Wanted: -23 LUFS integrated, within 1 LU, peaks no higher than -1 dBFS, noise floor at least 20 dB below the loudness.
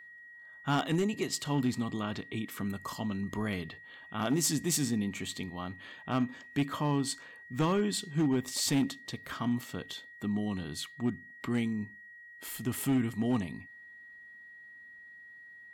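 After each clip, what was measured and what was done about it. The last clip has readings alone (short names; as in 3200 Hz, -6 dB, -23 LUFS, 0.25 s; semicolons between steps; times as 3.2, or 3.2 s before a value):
clipped 0.7%; flat tops at -22.5 dBFS; steady tone 1900 Hz; tone level -49 dBFS; loudness -33.0 LUFS; peak -22.5 dBFS; loudness target -23.0 LUFS
-> clip repair -22.5 dBFS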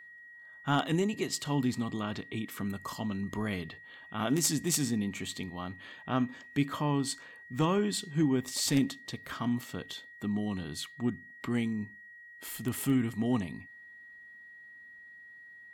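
clipped 0.0%; steady tone 1900 Hz; tone level -49 dBFS
-> notch 1900 Hz, Q 30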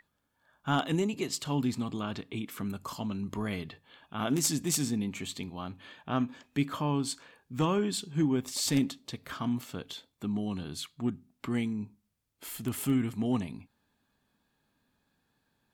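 steady tone none; loudness -32.5 LUFS; peak -13.5 dBFS; loudness target -23.0 LUFS
-> gain +9.5 dB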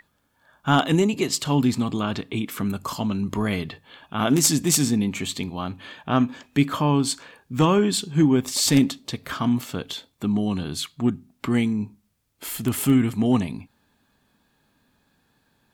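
loudness -23.0 LUFS; peak -4.0 dBFS; noise floor -68 dBFS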